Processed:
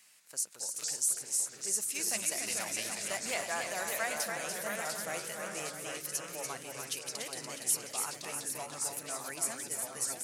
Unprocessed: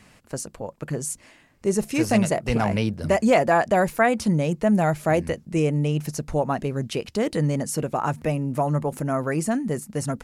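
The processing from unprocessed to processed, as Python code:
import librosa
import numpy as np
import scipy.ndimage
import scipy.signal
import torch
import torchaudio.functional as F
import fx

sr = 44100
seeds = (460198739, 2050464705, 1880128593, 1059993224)

y = np.diff(x, prepend=0.0)
y = fx.dmg_crackle(y, sr, seeds[0], per_s=28.0, level_db=-49.0, at=(2.98, 3.55), fade=0.02)
y = fx.echo_pitch(y, sr, ms=182, semitones=-2, count=3, db_per_echo=-6.0)
y = fx.echo_multitap(y, sr, ms=(290, 350, 652, 782), db=(-6.0, -17.0, -11.0, -8.5))
y = fx.band_squash(y, sr, depth_pct=70, at=(0.76, 1.66))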